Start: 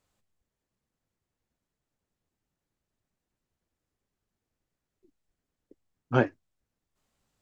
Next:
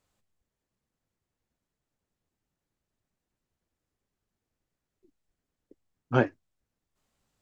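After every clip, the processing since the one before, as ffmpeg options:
-af anull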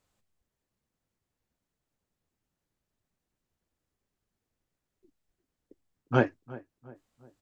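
-filter_complex "[0:a]asplit=2[a][b];[b]adelay=355,lowpass=f=1.4k:p=1,volume=-18.5dB,asplit=2[c][d];[d]adelay=355,lowpass=f=1.4k:p=1,volume=0.46,asplit=2[e][f];[f]adelay=355,lowpass=f=1.4k:p=1,volume=0.46,asplit=2[g][h];[h]adelay=355,lowpass=f=1.4k:p=1,volume=0.46[i];[a][c][e][g][i]amix=inputs=5:normalize=0"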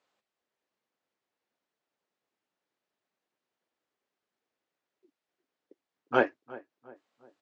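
-af "highpass=390,lowpass=4.4k,volume=2.5dB"

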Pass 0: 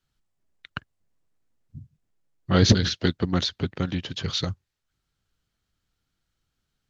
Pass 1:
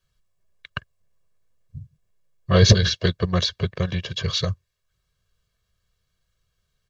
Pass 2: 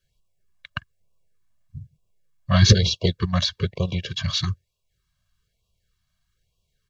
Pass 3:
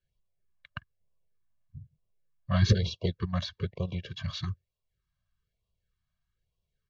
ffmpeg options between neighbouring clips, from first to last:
-af "aecho=1:1:1.8:0.93,volume=1dB"
-af "afftfilt=real='re*(1-between(b*sr/1024,370*pow(1700/370,0.5+0.5*sin(2*PI*1.1*pts/sr))/1.41,370*pow(1700/370,0.5+0.5*sin(2*PI*1.1*pts/sr))*1.41))':imag='im*(1-between(b*sr/1024,370*pow(1700/370,0.5+0.5*sin(2*PI*1.1*pts/sr))/1.41,370*pow(1700/370,0.5+0.5*sin(2*PI*1.1*pts/sr))*1.41))':win_size=1024:overlap=0.75"
-af "lowpass=f=2.2k:p=1,volume=-8dB"

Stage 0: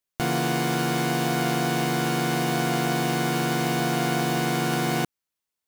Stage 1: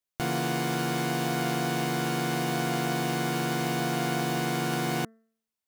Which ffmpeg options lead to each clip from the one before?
-af "bandreject=f=223.7:t=h:w=4,bandreject=f=447.4:t=h:w=4,bandreject=f=671.1:t=h:w=4,bandreject=f=894.8:t=h:w=4,bandreject=f=1.1185k:t=h:w=4,bandreject=f=1.3422k:t=h:w=4,bandreject=f=1.5659k:t=h:w=4,bandreject=f=1.7896k:t=h:w=4,bandreject=f=2.0133k:t=h:w=4,volume=-4dB"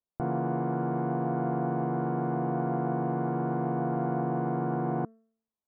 -af "lowpass=f=1.1k:w=0.5412,lowpass=f=1.1k:w=1.3066"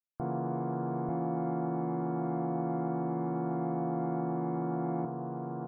-af "bandreject=f=1.5k:w=16,aecho=1:1:891:0.631,afftdn=nr=13:nf=-52,volume=-4dB"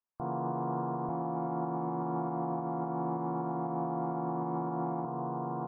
-af "lowpass=1.5k,equalizer=f=1k:t=o:w=0.73:g=10.5,alimiter=level_in=0.5dB:limit=-24dB:level=0:latency=1:release=182,volume=-0.5dB"

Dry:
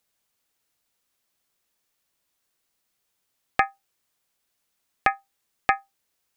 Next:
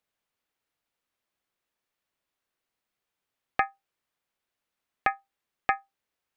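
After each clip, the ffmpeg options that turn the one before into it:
-af "bass=f=250:g=-2,treble=f=4k:g=-10,volume=-4dB"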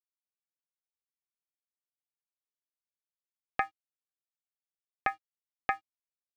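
-af "aeval=exprs='sgn(val(0))*max(abs(val(0))-0.00211,0)':c=same,volume=-4.5dB"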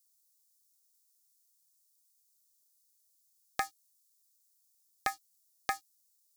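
-af "aexciter=amount=9.8:drive=8.9:freq=4k,volume=-3dB"

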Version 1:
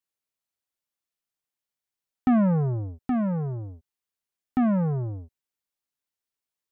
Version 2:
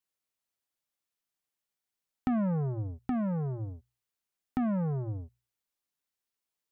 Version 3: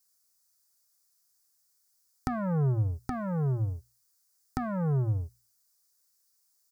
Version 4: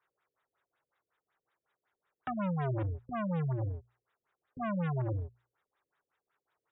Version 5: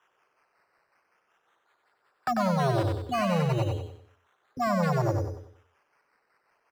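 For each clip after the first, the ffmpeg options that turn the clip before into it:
-af "bandreject=f=60:t=h:w=6,bandreject=f=120:t=h:w=6,acompressor=threshold=-32dB:ratio=2.5"
-af "firequalizer=gain_entry='entry(130,0);entry(220,-15);entry(390,-3);entry(610,-7);entry(1400,0);entry(2900,-13);entry(4800,11)':delay=0.05:min_phase=1,volume=7.5dB"
-filter_complex "[0:a]aeval=exprs='0.0668*(abs(mod(val(0)/0.0668+3,4)-2)-1)':c=same,asplit=2[a][b];[b]highpass=f=720:p=1,volume=26dB,asoftclip=type=tanh:threshold=-23.5dB[c];[a][c]amix=inputs=2:normalize=0,lowpass=f=1.8k:p=1,volume=-6dB,afftfilt=real='re*lt(b*sr/1024,520*pow(3900/520,0.5+0.5*sin(2*PI*5.4*pts/sr)))':imag='im*lt(b*sr/1024,520*pow(3900/520,0.5+0.5*sin(2*PI*5.4*pts/sr)))':win_size=1024:overlap=0.75,volume=-3.5dB"
-filter_complex "[0:a]acrossover=split=210[a][b];[b]acrusher=samples=10:mix=1:aa=0.000001:lfo=1:lforange=6:lforate=0.36[c];[a][c]amix=inputs=2:normalize=0,asplit=2[d][e];[e]highpass=f=720:p=1,volume=13dB,asoftclip=type=tanh:threshold=-23.5dB[f];[d][f]amix=inputs=2:normalize=0,lowpass=f=1.7k:p=1,volume=-6dB,aecho=1:1:94|188|282|376|470:0.596|0.22|0.0815|0.0302|0.0112,volume=7.5dB"

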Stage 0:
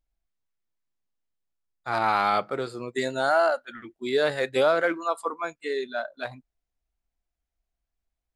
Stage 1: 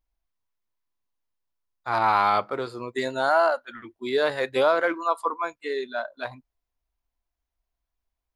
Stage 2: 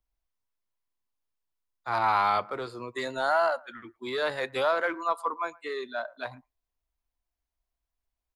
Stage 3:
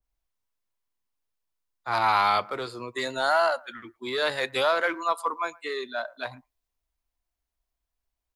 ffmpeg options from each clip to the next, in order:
-af "equalizer=f=100:t=o:w=0.33:g=5,equalizer=f=160:t=o:w=0.33:g=-10,equalizer=f=1k:t=o:w=0.33:g=8,equalizer=f=8k:t=o:w=0.33:g=-8"
-filter_complex "[0:a]acrossover=split=140|610|2100[a][b][c][d];[b]asoftclip=type=tanh:threshold=-30dB[e];[c]aecho=1:1:113:0.0841[f];[a][e][f][d]amix=inputs=4:normalize=0,volume=-3dB"
-af "adynamicequalizer=threshold=0.0112:dfrequency=2100:dqfactor=0.7:tfrequency=2100:tqfactor=0.7:attack=5:release=100:ratio=0.375:range=3.5:mode=boostabove:tftype=highshelf,volume=1.5dB"

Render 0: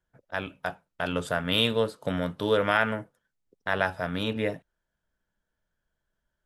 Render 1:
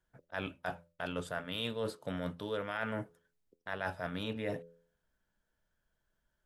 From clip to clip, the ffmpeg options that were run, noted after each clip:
-af "bandreject=f=84.71:t=h:w=4,bandreject=f=169.42:t=h:w=4,bandreject=f=254.13:t=h:w=4,bandreject=f=338.84:t=h:w=4,bandreject=f=423.55:t=h:w=4,bandreject=f=508.26:t=h:w=4,bandreject=f=592.97:t=h:w=4,areverse,acompressor=threshold=-34dB:ratio=6,areverse"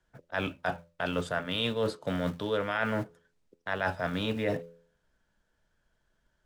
-filter_complex "[0:a]lowpass=7.7k,acrossover=split=200[a][b];[a]acrusher=bits=3:mode=log:mix=0:aa=0.000001[c];[c][b]amix=inputs=2:normalize=0,volume=7dB"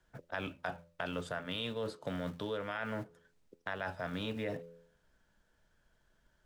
-af "acompressor=threshold=-40dB:ratio=3,volume=2dB"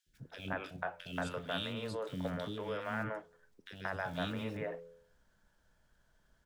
-filter_complex "[0:a]acrossover=split=370|2500[a][b][c];[a]adelay=60[d];[b]adelay=180[e];[d][e][c]amix=inputs=3:normalize=0,volume=1.5dB"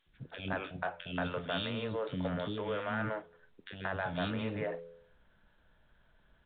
-filter_complex "[0:a]asplit=2[a][b];[b]aeval=exprs='0.0211*(abs(mod(val(0)/0.0211+3,4)-2)-1)':c=same,volume=-9dB[c];[a][c]amix=inputs=2:normalize=0,volume=1dB" -ar 8000 -c:a pcm_mulaw

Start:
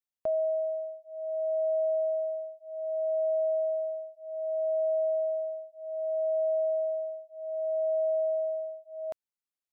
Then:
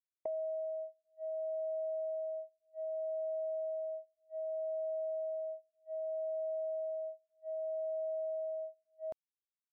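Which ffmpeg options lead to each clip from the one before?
-af "agate=range=-29dB:threshold=-36dB:ratio=16:detection=peak,tiltshelf=f=710:g=6,acompressor=threshold=-40dB:ratio=3"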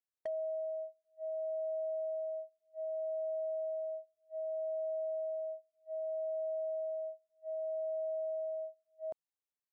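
-af "equalizer=f=570:w=0.6:g=6,asoftclip=type=hard:threshold=-27.5dB,volume=-5.5dB"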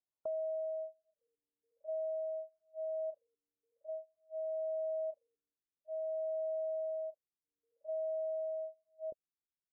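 -af "afftfilt=real='re*lt(b*sr/1024,400*pow(1700/400,0.5+0.5*sin(2*PI*0.5*pts/sr)))':imag='im*lt(b*sr/1024,400*pow(1700/400,0.5+0.5*sin(2*PI*0.5*pts/sr)))':win_size=1024:overlap=0.75"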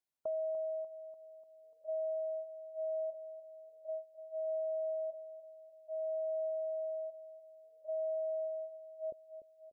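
-af "aecho=1:1:295|590|885|1180|1475|1770:0.282|0.149|0.0792|0.042|0.0222|0.0118,volume=1dB"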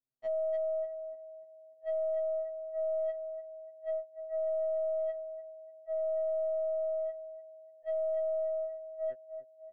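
-af "adynamicsmooth=sensitivity=5:basefreq=540,aeval=exprs='(tanh(100*val(0)+0.1)-tanh(0.1))/100':c=same,afftfilt=real='re*2.45*eq(mod(b,6),0)':imag='im*2.45*eq(mod(b,6),0)':win_size=2048:overlap=0.75,volume=7.5dB"

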